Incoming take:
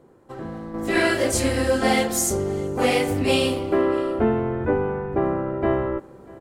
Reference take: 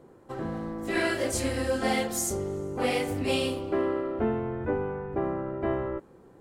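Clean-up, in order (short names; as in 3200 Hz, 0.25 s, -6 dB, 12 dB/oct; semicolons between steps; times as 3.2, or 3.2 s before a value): inverse comb 0.642 s -23 dB; gain correction -7 dB, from 0.74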